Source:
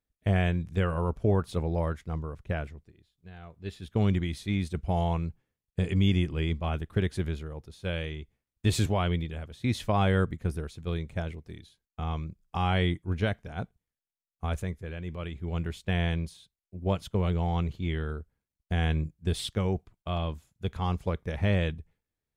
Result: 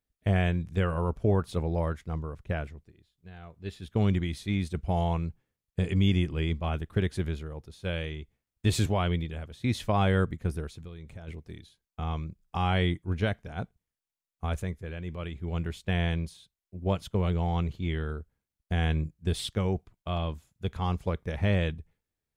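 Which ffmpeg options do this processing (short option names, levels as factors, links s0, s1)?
-filter_complex "[0:a]asplit=3[s0][s1][s2];[s0]afade=t=out:st=10.75:d=0.02[s3];[s1]acompressor=threshold=0.0126:ratio=12:attack=3.2:release=140:knee=1:detection=peak,afade=t=in:st=10.75:d=0.02,afade=t=out:st=11.27:d=0.02[s4];[s2]afade=t=in:st=11.27:d=0.02[s5];[s3][s4][s5]amix=inputs=3:normalize=0"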